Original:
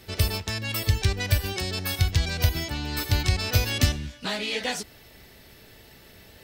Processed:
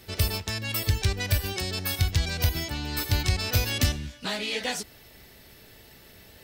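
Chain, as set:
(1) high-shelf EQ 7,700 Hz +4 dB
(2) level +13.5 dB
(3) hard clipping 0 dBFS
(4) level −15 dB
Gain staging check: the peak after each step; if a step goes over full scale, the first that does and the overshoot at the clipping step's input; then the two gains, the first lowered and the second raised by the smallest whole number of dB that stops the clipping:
−7.0, +6.5, 0.0, −15.0 dBFS
step 2, 6.5 dB
step 2 +6.5 dB, step 4 −8 dB

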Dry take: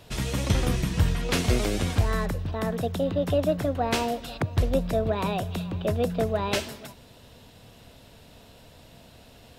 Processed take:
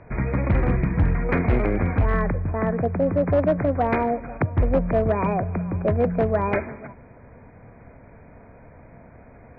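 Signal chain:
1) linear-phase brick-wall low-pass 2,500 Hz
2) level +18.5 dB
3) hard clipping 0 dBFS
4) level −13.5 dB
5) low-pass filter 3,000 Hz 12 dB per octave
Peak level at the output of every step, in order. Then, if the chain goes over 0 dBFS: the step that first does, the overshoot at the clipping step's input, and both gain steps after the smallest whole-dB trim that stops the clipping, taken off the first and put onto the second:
−10.0, +8.5, 0.0, −13.5, −13.0 dBFS
step 2, 8.5 dB
step 2 +9.5 dB, step 4 −4.5 dB

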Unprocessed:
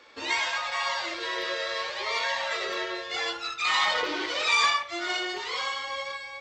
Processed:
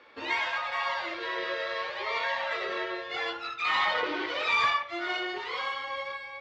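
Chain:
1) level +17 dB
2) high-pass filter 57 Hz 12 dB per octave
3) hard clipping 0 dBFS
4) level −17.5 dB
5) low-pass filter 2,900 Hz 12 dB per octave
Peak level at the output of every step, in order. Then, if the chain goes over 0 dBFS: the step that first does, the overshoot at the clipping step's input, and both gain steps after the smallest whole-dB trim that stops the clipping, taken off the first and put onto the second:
+5.5, +5.5, 0.0, −17.5, −17.0 dBFS
step 1, 5.5 dB
step 1 +11 dB, step 4 −11.5 dB

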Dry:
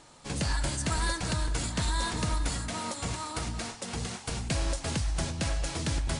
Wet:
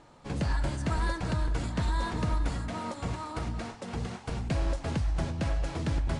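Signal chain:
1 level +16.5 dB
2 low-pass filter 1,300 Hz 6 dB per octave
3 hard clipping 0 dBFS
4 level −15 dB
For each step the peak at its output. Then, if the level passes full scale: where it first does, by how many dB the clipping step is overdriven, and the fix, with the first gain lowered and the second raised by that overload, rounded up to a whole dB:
−1.0, −3.0, −3.0, −18.0 dBFS
no step passes full scale

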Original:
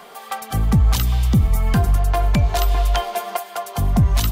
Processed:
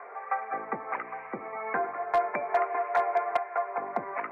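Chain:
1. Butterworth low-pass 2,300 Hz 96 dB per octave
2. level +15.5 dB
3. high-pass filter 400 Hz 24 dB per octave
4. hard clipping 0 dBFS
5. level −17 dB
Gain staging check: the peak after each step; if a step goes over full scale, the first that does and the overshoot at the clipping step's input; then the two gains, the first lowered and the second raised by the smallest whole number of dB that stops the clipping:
−8.0, +7.5, +5.0, 0.0, −17.0 dBFS
step 2, 5.0 dB
step 2 +10.5 dB, step 5 −12 dB

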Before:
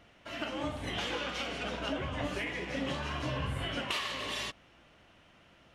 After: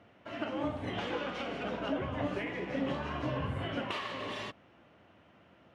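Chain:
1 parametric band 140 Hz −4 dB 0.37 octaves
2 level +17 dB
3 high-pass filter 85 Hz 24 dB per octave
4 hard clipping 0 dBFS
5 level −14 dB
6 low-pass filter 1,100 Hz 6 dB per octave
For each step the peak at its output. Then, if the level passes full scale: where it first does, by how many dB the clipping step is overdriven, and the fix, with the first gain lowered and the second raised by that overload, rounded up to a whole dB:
−22.0, −5.0, −3.5, −3.5, −17.5, −22.0 dBFS
no step passes full scale

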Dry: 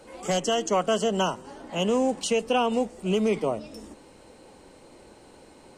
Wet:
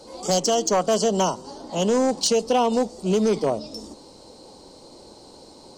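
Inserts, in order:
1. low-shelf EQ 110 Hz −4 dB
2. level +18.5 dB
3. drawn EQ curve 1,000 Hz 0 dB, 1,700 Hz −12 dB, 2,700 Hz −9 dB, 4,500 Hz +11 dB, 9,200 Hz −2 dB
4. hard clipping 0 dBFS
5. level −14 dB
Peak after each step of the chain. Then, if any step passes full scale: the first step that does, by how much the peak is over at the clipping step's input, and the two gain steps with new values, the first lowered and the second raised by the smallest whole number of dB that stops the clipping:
−12.5, +6.0, +6.5, 0.0, −14.0 dBFS
step 2, 6.5 dB
step 2 +11.5 dB, step 5 −7 dB

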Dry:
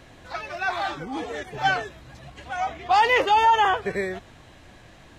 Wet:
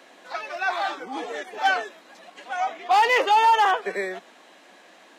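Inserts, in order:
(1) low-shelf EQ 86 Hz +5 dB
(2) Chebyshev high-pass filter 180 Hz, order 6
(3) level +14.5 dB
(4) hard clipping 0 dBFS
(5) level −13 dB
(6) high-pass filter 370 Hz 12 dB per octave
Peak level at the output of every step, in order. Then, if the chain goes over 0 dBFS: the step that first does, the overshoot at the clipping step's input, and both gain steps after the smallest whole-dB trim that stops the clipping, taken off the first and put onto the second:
−9.0, −9.0, +5.5, 0.0, −13.0, −9.5 dBFS
step 3, 5.5 dB
step 3 +8.5 dB, step 5 −7 dB

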